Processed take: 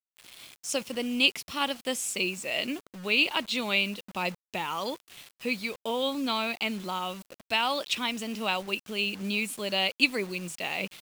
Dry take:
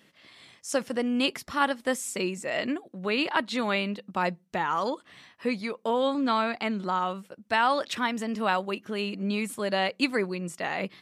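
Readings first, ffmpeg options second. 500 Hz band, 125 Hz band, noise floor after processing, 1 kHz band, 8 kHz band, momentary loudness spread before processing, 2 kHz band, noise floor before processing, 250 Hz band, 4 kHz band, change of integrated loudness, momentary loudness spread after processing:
−4.5 dB, −4.0 dB, below −85 dBFS, −5.5 dB, +3.0 dB, 7 LU, +1.5 dB, −63 dBFS, −4.0 dB, +5.5 dB, −0.5 dB, 10 LU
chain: -af "highshelf=frequency=2100:width_type=q:width=3:gain=6,acrusher=bits=6:mix=0:aa=0.000001,volume=-4dB"

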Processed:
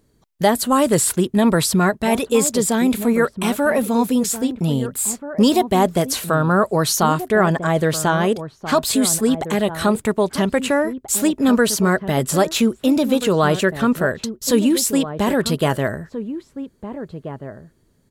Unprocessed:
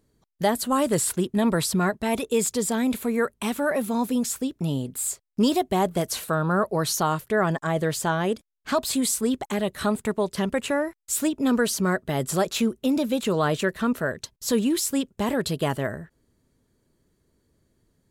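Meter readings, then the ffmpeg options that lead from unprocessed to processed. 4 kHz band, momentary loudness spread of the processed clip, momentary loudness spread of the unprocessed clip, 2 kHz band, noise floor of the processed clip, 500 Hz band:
+6.5 dB, 8 LU, 5 LU, +6.5 dB, −59 dBFS, +7.0 dB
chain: -filter_complex "[0:a]asplit=2[link_01][link_02];[link_02]adelay=1633,volume=-11dB,highshelf=frequency=4000:gain=-36.7[link_03];[link_01][link_03]amix=inputs=2:normalize=0,volume=6.5dB"

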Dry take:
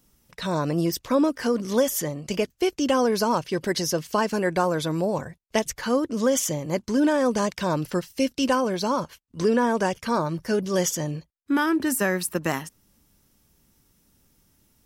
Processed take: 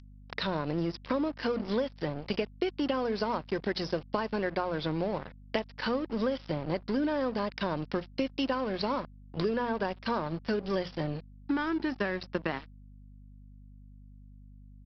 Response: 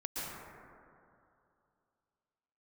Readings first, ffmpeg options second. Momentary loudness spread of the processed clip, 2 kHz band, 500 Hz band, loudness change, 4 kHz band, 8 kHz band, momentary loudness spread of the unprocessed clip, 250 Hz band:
5 LU, −6.5 dB, −7.5 dB, −8.0 dB, −6.5 dB, below −30 dB, 7 LU, −7.5 dB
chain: -filter_complex "[0:a]acompressor=mode=upward:threshold=-26dB:ratio=2.5,highpass=frequency=90:width=0.5412,highpass=frequency=90:width=1.3066,bandreject=frequency=60:width_type=h:width=6,bandreject=frequency=120:width_type=h:width=6,bandreject=frequency=180:width_type=h:width=6,bandreject=frequency=240:width_type=h:width=6,asplit=2[link_01][link_02];[link_02]adelay=65,lowpass=frequency=1200:poles=1,volume=-23dB,asplit=2[link_03][link_04];[link_04]adelay=65,lowpass=frequency=1200:poles=1,volume=0.38,asplit=2[link_05][link_06];[link_06]adelay=65,lowpass=frequency=1200:poles=1,volume=0.38[link_07];[link_01][link_03][link_05][link_07]amix=inputs=4:normalize=0,aresample=11025,aeval=exprs='sgn(val(0))*max(abs(val(0))-0.0158,0)':channel_layout=same,aresample=44100,acompressor=threshold=-29dB:ratio=6,aeval=exprs='val(0)+0.00251*(sin(2*PI*50*n/s)+sin(2*PI*2*50*n/s)/2+sin(2*PI*3*50*n/s)/3+sin(2*PI*4*50*n/s)/4+sin(2*PI*5*50*n/s)/5)':channel_layout=same,volume=2dB"

